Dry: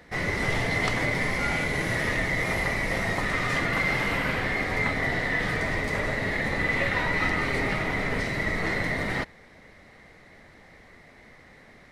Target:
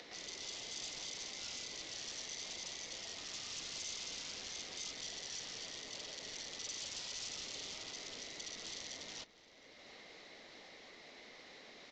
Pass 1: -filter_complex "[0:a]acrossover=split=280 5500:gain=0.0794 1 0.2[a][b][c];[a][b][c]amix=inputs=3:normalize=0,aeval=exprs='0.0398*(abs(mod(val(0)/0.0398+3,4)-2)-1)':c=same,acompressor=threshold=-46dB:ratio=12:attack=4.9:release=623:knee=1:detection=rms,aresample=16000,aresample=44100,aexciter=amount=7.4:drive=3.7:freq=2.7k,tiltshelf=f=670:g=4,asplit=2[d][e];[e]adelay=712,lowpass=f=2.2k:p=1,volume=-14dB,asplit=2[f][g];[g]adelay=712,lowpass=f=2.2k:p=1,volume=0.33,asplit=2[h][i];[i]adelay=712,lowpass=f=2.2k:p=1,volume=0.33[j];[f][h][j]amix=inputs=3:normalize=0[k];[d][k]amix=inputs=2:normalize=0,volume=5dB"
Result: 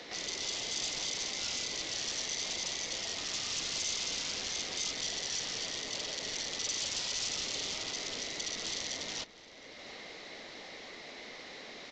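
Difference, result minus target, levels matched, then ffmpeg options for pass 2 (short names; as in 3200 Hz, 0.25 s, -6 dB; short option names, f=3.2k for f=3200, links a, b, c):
compressor: peak gain reduction -9 dB
-filter_complex "[0:a]acrossover=split=280 5500:gain=0.0794 1 0.2[a][b][c];[a][b][c]amix=inputs=3:normalize=0,aeval=exprs='0.0398*(abs(mod(val(0)/0.0398+3,4)-2)-1)':c=same,acompressor=threshold=-56dB:ratio=12:attack=4.9:release=623:knee=1:detection=rms,aresample=16000,aresample=44100,aexciter=amount=7.4:drive=3.7:freq=2.7k,tiltshelf=f=670:g=4,asplit=2[d][e];[e]adelay=712,lowpass=f=2.2k:p=1,volume=-14dB,asplit=2[f][g];[g]adelay=712,lowpass=f=2.2k:p=1,volume=0.33,asplit=2[h][i];[i]adelay=712,lowpass=f=2.2k:p=1,volume=0.33[j];[f][h][j]amix=inputs=3:normalize=0[k];[d][k]amix=inputs=2:normalize=0,volume=5dB"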